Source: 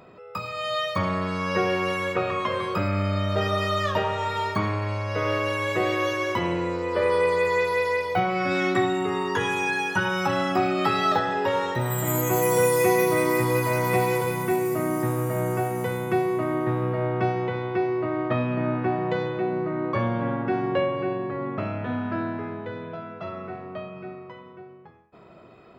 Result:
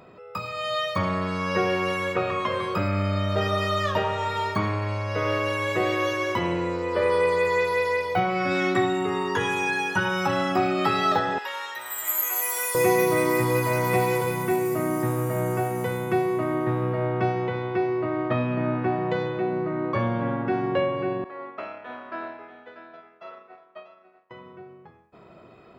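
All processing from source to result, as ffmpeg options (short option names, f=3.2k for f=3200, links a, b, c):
-filter_complex "[0:a]asettb=1/sr,asplit=3[a][b][c];[a]atrim=end=11.384[d];[b]atrim=start=11.38:end=12.75,asetpts=PTS-STARTPTS,afade=t=in:d=0.004:c=qsin,afade=t=out:st=1.366:d=0.004:c=qsin,highpass=1.4k,equalizer=f=12k:w=5.8:g=12.5[e];[c]atrim=start=12.746[f];[d][e]acrossfade=d=0.004:c1=hsin:c2=qsin[g];[g][f]acrossfade=d=0.004:c1=qsin:c2=hsin,asettb=1/sr,asplit=3[h][i][j];[h]atrim=end=21.244[k];[i]atrim=start=21.24:end=24.31,asetpts=PTS-STARTPTS,afade=t=in:d=0.004:c=qsin,afade=t=out:st=3.066:d=0.004:c=qsin,highpass=550,agate=range=-33dB:threshold=-32dB:ratio=3:release=100:detection=peak,aecho=1:1:639:0.266,atrim=end_sample=135387[l];[j]atrim=start=24.306[m];[k][l]acrossfade=d=0.004:c1=hsin:c2=qsin[n];[n][m]acrossfade=d=0.004:c1=qsin:c2=hsin"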